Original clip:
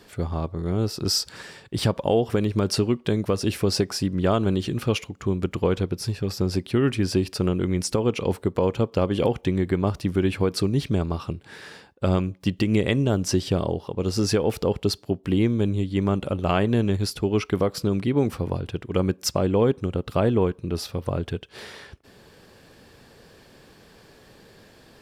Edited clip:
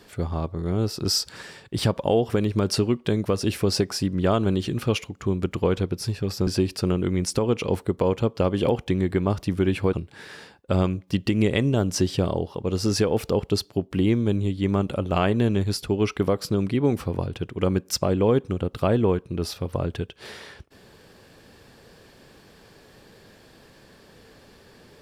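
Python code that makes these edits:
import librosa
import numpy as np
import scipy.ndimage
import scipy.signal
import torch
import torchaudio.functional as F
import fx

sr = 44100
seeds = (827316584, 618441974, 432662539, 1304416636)

y = fx.edit(x, sr, fx.cut(start_s=6.47, length_s=0.57),
    fx.cut(start_s=10.5, length_s=0.76), tone=tone)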